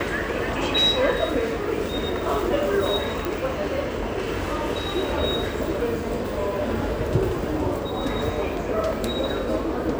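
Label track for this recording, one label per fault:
3.250000	3.250000	click

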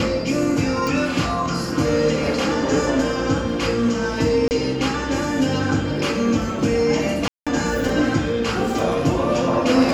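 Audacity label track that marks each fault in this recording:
0.870000	0.870000	click
4.480000	4.510000	drop-out 29 ms
7.280000	7.470000	drop-out 186 ms

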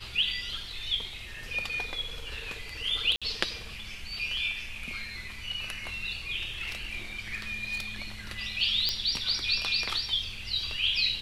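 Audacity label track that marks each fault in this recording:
3.160000	3.220000	drop-out 56 ms
6.550000	8.050000	clipping −28 dBFS
8.890000	8.890000	click −12 dBFS

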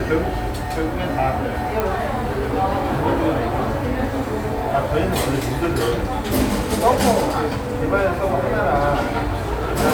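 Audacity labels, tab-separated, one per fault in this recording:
1.800000	1.800000	click −8 dBFS

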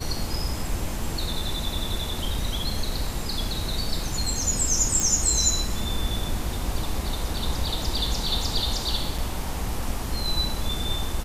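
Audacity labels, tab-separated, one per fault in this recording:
5.000000	5.000000	click
9.180000	9.190000	drop-out 5.1 ms

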